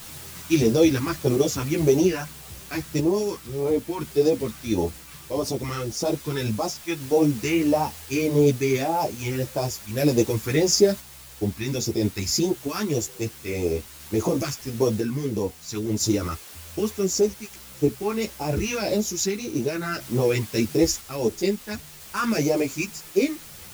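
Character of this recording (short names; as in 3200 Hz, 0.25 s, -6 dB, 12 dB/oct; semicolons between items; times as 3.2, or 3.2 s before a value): phasing stages 2, 1.7 Hz, lowest notch 580–1700 Hz; a quantiser's noise floor 8-bit, dither triangular; random-step tremolo 1 Hz; a shimmering, thickened sound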